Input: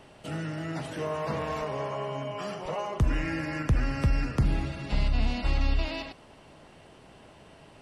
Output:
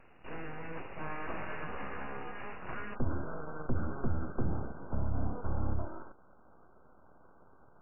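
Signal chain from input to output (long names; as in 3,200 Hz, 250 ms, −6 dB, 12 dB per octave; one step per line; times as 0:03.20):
full-wave rectification
linear-phase brick-wall low-pass 2,900 Hz, from 0:02.94 1,600 Hz
level −4.5 dB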